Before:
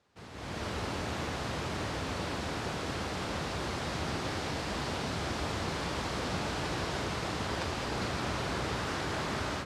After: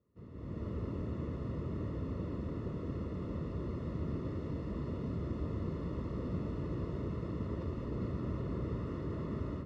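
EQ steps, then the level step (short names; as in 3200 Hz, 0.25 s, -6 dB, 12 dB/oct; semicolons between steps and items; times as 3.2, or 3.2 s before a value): running mean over 56 samples; +1.0 dB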